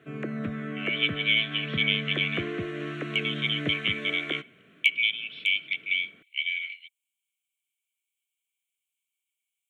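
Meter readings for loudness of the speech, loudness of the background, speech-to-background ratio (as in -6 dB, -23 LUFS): -27.0 LUFS, -34.0 LUFS, 7.0 dB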